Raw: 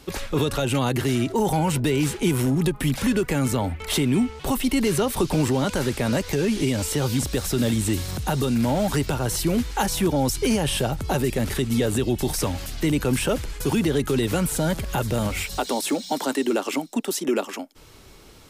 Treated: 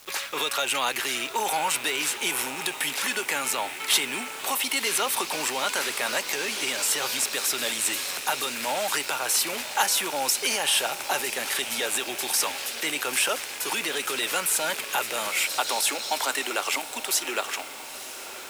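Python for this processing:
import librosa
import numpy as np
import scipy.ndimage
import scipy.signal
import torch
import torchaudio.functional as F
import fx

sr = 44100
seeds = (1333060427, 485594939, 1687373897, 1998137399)

y = fx.rattle_buzz(x, sr, strikes_db=-36.0, level_db=-30.0)
y = scipy.signal.sosfilt(scipy.signal.butter(2, 1000.0, 'highpass', fs=sr, output='sos'), y)
y = fx.echo_diffused(y, sr, ms=965, feedback_pct=61, wet_db=-13)
y = fx.quant_dither(y, sr, seeds[0], bits=8, dither='none')
y = y * librosa.db_to_amplitude(4.5)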